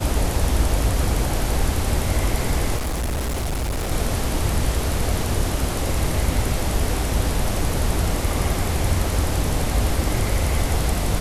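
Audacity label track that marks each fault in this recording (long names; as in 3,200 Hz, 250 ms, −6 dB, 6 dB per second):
2.760000	3.920000	clipping −21 dBFS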